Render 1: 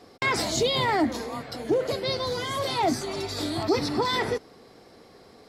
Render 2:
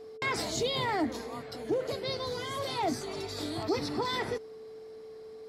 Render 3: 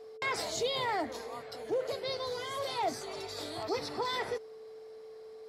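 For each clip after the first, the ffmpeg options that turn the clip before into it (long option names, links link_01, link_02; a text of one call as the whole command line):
ffmpeg -i in.wav -af "aeval=exprs='val(0)+0.0141*sin(2*PI*440*n/s)':channel_layout=same,volume=-6.5dB" out.wav
ffmpeg -i in.wav -af "lowshelf=frequency=380:width_type=q:width=1.5:gain=-7,volume=-2dB" out.wav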